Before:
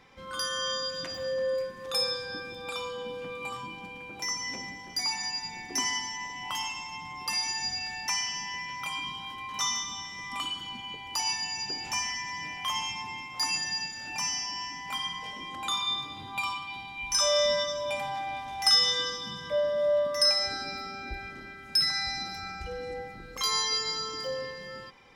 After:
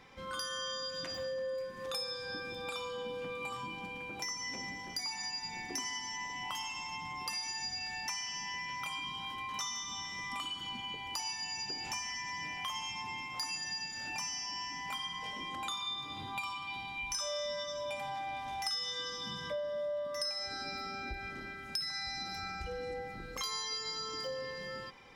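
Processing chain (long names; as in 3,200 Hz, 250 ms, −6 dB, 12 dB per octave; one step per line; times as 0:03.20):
downward compressor 4 to 1, threshold −37 dBFS, peak gain reduction 16 dB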